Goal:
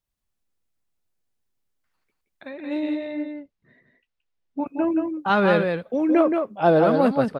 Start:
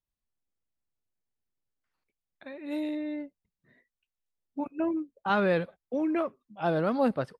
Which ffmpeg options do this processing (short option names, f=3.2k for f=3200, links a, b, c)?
-filter_complex "[0:a]asettb=1/sr,asplit=3[a][b][c];[a]atrim=end=2.504[d];[b]atrim=start=2.5:end=4.67,asetpts=PTS-STARTPTS,afade=t=in:d=0.004:c=qsin,afade=t=out:st=2.166:d=0.004:c=qsin,lowpass=4.4k[e];[c]atrim=start=4.666[f];[d][e]acrossfade=d=0.004:c1=hsin:c2=qsin[g];[g][f]acrossfade=d=0.004:c1=qsin:c2=hsin,asettb=1/sr,asplit=3[h][i][j];[h]atrim=end=6.094[k];[i]atrim=start=6.09:end=6.84,asetpts=PTS-STARTPTS,afade=t=in:d=0.004:c=qsin,afade=t=out:st=0.746:d=0.004:c=qsin,equalizer=f=490:t=o:w=1.8:g=6[l];[j]atrim=start=6.836[m];[k][l]acrossfade=d=0.004:c1=hsin:c2=qsin[n];[n][m]acrossfade=d=0.004:c1=qsin:c2=hsin,aecho=1:1:174:0.562,volume=6dB"